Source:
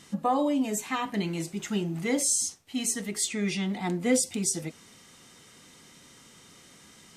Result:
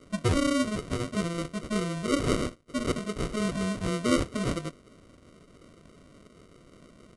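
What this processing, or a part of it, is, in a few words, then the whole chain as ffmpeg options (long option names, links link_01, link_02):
crushed at another speed: -af "asetrate=88200,aresample=44100,acrusher=samples=26:mix=1:aa=0.000001,asetrate=22050,aresample=44100"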